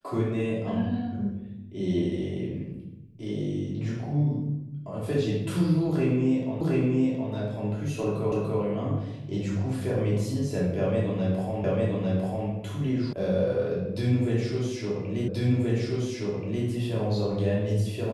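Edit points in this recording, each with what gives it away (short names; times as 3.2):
6.61 repeat of the last 0.72 s
8.32 repeat of the last 0.29 s
11.64 repeat of the last 0.85 s
13.13 sound cut off
15.28 repeat of the last 1.38 s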